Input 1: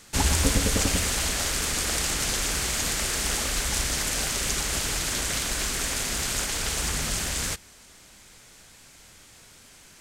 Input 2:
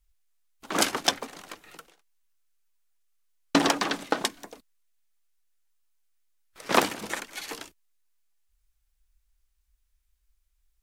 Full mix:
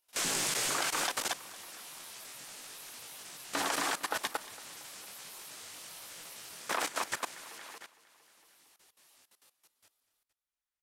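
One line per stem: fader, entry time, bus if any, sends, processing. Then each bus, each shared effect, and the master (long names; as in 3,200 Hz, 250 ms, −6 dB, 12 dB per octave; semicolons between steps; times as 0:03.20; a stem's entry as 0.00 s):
+0.5 dB, 0.00 s, no send, echo send −12.5 dB, gate on every frequency bin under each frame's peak −15 dB weak; micro pitch shift up and down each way 12 cents
−11.0 dB, 0.00 s, no send, echo send −6 dB, high-pass filter 360 Hz 6 dB per octave; parametric band 1,300 Hz +11 dB 2.9 octaves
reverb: not used
echo: repeating echo 229 ms, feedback 47%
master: output level in coarse steps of 16 dB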